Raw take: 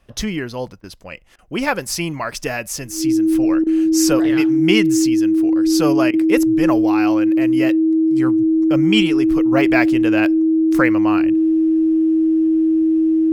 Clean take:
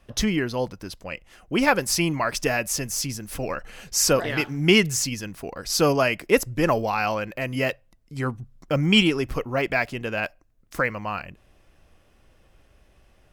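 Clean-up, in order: notch 320 Hz, Q 30; interpolate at 0.81/1.36/3.64/6.11, 25 ms; gain 0 dB, from 9.52 s -5.5 dB

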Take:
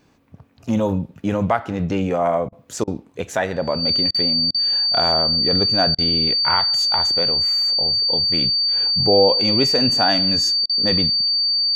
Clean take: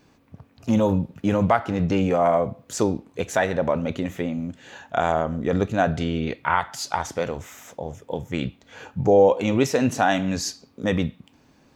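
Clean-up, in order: notch 4600 Hz, Q 30; interpolate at 2.49/2.84/4.11/4.51/5.95/10.66, 33 ms

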